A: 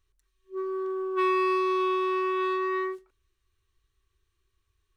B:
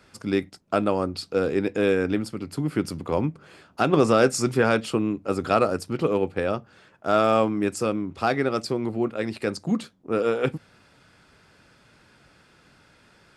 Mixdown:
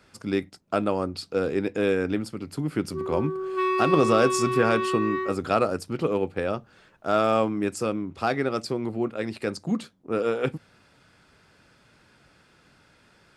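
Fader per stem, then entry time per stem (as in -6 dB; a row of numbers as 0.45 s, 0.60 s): 0.0 dB, -2.0 dB; 2.40 s, 0.00 s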